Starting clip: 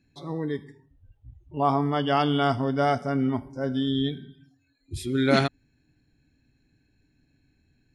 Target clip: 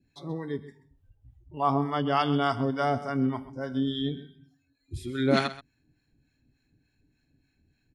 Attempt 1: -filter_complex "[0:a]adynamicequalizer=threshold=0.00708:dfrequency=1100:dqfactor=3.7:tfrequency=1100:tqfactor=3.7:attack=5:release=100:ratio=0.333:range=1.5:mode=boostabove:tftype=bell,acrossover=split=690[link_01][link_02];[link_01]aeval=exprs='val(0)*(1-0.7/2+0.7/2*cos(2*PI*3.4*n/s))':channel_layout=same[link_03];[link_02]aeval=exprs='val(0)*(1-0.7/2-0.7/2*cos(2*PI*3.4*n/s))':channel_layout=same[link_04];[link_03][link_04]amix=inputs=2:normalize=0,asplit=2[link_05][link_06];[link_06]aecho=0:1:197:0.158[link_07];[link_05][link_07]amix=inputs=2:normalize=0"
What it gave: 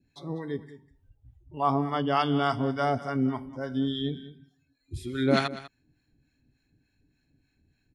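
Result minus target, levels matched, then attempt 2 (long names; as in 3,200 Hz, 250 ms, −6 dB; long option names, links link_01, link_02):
echo 67 ms late
-filter_complex "[0:a]adynamicequalizer=threshold=0.00708:dfrequency=1100:dqfactor=3.7:tfrequency=1100:tqfactor=3.7:attack=5:release=100:ratio=0.333:range=1.5:mode=boostabove:tftype=bell,acrossover=split=690[link_01][link_02];[link_01]aeval=exprs='val(0)*(1-0.7/2+0.7/2*cos(2*PI*3.4*n/s))':channel_layout=same[link_03];[link_02]aeval=exprs='val(0)*(1-0.7/2-0.7/2*cos(2*PI*3.4*n/s))':channel_layout=same[link_04];[link_03][link_04]amix=inputs=2:normalize=0,asplit=2[link_05][link_06];[link_06]aecho=0:1:130:0.158[link_07];[link_05][link_07]amix=inputs=2:normalize=0"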